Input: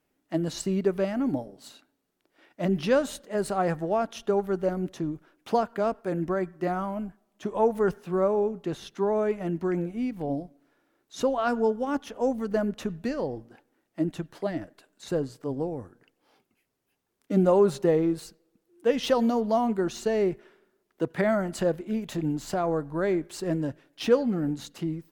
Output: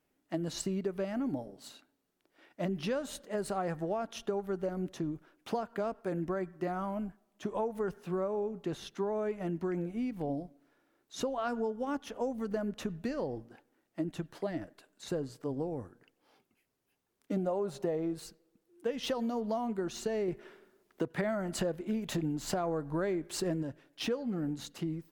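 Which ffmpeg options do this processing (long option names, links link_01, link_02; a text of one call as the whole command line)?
ffmpeg -i in.wav -filter_complex "[0:a]asettb=1/sr,asplit=3[link_01][link_02][link_03];[link_01]atrim=end=17.364[link_04];[link_02]atrim=start=17.36:end=18.14,asetpts=PTS-STARTPTS,afade=type=in:duration=0.004:curve=qsin,afade=type=out:start_time=0.776:duration=0.004:curve=qsin,equalizer=frequency=670:width_type=o:width=0.45:gain=8.5[link_05];[link_03]atrim=start=18.136[link_06];[link_04][link_05]acrossfade=duration=0.004:curve1=hsin:curve2=qsin[link_07];[link_07][link_06]acrossfade=duration=0.004:curve1=qsin:curve2=hsin,asettb=1/sr,asplit=3[link_08][link_09][link_10];[link_08]atrim=end=20.284[link_11];[link_09]atrim=start=20.28:end=23.63,asetpts=PTS-STARTPTS,afade=type=in:duration=0.004:curve=qsin,afade=type=out:start_time=3.346:duration=0.004:curve=qsin,acontrast=59[link_12];[link_10]atrim=start=23.626[link_13];[link_11][link_12]acrossfade=duration=0.004:curve1=hsin:curve2=qsin[link_14];[link_14][link_13]acrossfade=duration=0.004:curve1=qsin:curve2=hsin,acompressor=threshold=-28dB:ratio=6,volume=-2.5dB" out.wav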